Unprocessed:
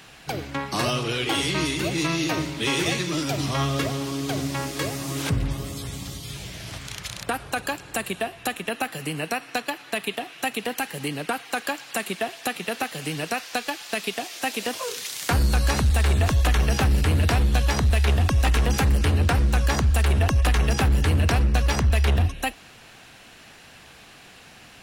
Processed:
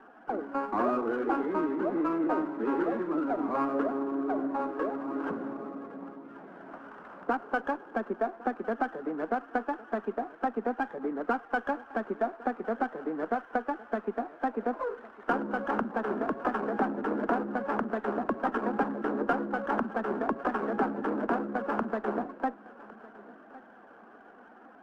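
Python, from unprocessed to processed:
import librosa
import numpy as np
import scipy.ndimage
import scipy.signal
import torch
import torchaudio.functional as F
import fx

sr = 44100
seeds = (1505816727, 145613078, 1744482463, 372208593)

y = fx.spec_quant(x, sr, step_db=15)
y = scipy.signal.sosfilt(scipy.signal.cheby1(4, 1.0, [220.0, 1500.0], 'bandpass', fs=sr, output='sos'), y)
y = fx.echo_feedback(y, sr, ms=1107, feedback_pct=33, wet_db=-20)
y = fx.running_max(y, sr, window=3)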